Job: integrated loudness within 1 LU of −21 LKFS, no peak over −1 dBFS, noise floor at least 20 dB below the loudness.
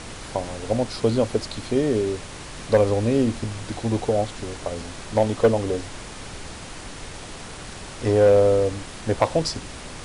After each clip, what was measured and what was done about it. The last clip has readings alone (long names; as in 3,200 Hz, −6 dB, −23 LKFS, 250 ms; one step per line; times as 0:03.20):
share of clipped samples 0.5%; peaks flattened at −9.5 dBFS; background noise floor −38 dBFS; target noise floor −43 dBFS; integrated loudness −23.0 LKFS; sample peak −9.5 dBFS; target loudness −21.0 LKFS
→ clipped peaks rebuilt −9.5 dBFS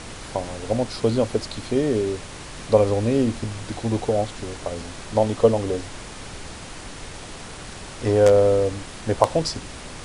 share of clipped samples 0.0%; background noise floor −38 dBFS; target noise floor −43 dBFS
→ noise reduction from a noise print 6 dB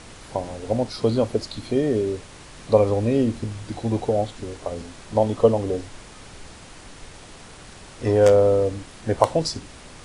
background noise floor −44 dBFS; integrated loudness −22.5 LKFS; sample peak −1.5 dBFS; target loudness −21.0 LKFS
→ level +1.5 dB
brickwall limiter −1 dBFS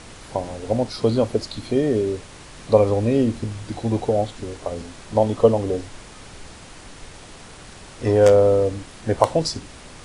integrated loudness −21.0 LKFS; sample peak −1.0 dBFS; background noise floor −42 dBFS